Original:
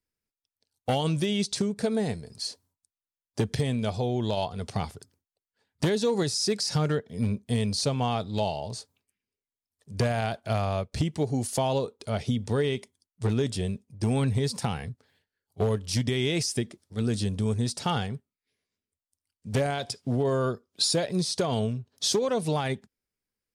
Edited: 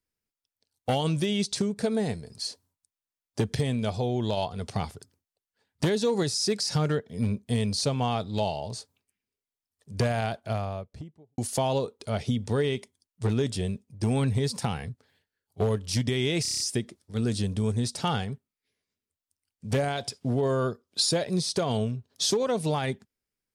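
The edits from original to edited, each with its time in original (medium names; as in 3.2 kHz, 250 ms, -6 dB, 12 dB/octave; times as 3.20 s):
10.15–11.38 s: studio fade out
16.42 s: stutter 0.03 s, 7 plays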